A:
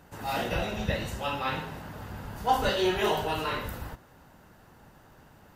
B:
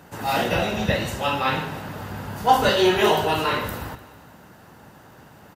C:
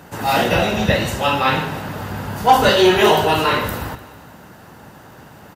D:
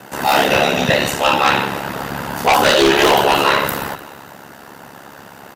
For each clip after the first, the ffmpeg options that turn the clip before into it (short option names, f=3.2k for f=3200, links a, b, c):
-af "highpass=89,aecho=1:1:150|300|450|600|750:0.119|0.0666|0.0373|0.0209|0.0117,volume=8dB"
-af "asoftclip=type=tanh:threshold=-6.5dB,volume=6dB"
-af "aeval=exprs='val(0)*sin(2*PI*35*n/s)':c=same,highpass=f=320:p=1,aeval=exprs='0.794*sin(PI/2*3.16*val(0)/0.794)':c=same,volume=-5dB"